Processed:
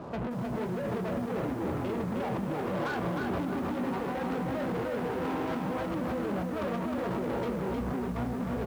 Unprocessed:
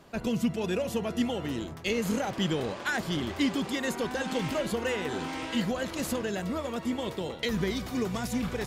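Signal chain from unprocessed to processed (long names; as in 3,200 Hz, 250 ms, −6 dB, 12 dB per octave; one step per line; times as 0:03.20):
brickwall limiter −22.5 dBFS, peak gain reduction 6 dB
flat-topped bell 4,200 Hz −15.5 dB 2.8 octaves
soft clipping −35.5 dBFS, distortion −9 dB
double-tracking delay 45 ms −13 dB
on a send: ambience of single reflections 16 ms −6 dB, 33 ms −7.5 dB
on the sum: compressor whose output falls as the input rises −40 dBFS, ratio −1
high-frequency loss of the air 320 metres
leveller curve on the samples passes 3
high-pass filter 60 Hz 12 dB per octave
feedback echo at a low word length 310 ms, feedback 35%, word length 9 bits, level −3 dB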